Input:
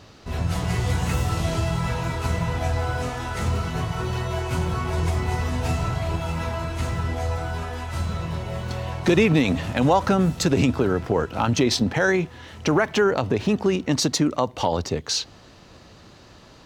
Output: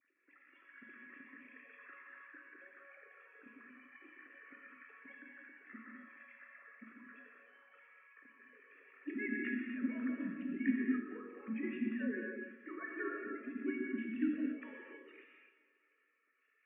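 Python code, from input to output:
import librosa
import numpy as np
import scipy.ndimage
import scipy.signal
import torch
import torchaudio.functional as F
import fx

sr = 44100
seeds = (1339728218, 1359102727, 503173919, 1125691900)

p1 = fx.sine_speech(x, sr)
p2 = fx.vowel_filter(p1, sr, vowel='i')
p3 = fx.notch(p2, sr, hz=660.0, q=12.0)
p4 = fx.comb_fb(p3, sr, f0_hz=560.0, decay_s=0.55, harmonics='all', damping=0.0, mix_pct=90)
p5 = fx.formant_shift(p4, sr, semitones=-4)
p6 = p5 + fx.echo_split(p5, sr, split_hz=450.0, low_ms=138, high_ms=231, feedback_pct=52, wet_db=-15.5, dry=0)
p7 = fx.rev_gated(p6, sr, seeds[0], gate_ms=320, shape='flat', drr_db=-0.5)
y = p7 * 10.0 ** (9.5 / 20.0)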